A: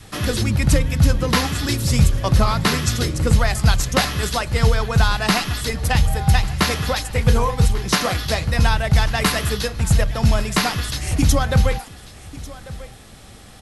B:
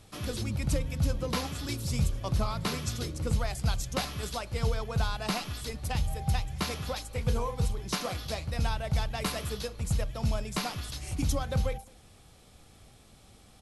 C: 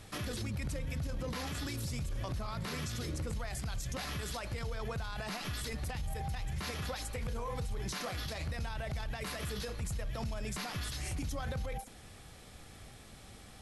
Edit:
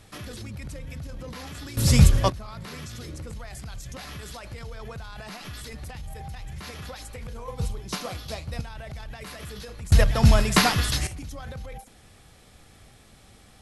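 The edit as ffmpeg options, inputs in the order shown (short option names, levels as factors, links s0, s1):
-filter_complex "[0:a]asplit=2[s0][s1];[2:a]asplit=4[s2][s3][s4][s5];[s2]atrim=end=1.772[s6];[s0]atrim=start=1.768:end=2.302[s7];[s3]atrim=start=2.298:end=7.482[s8];[1:a]atrim=start=7.478:end=8.612[s9];[s4]atrim=start=8.608:end=9.922[s10];[s1]atrim=start=9.918:end=11.072[s11];[s5]atrim=start=11.068[s12];[s6][s7]acrossfade=d=0.004:c1=hsin:c2=hsin[s13];[s13][s8]acrossfade=d=0.004:c1=hsin:c2=hsin[s14];[s14][s9]acrossfade=d=0.004:c1=hsin:c2=hsin[s15];[s15][s10]acrossfade=d=0.004:c1=hsin:c2=hsin[s16];[s16][s11]acrossfade=d=0.004:c1=hsin:c2=hsin[s17];[s17][s12]acrossfade=d=0.004:c1=hsin:c2=hsin"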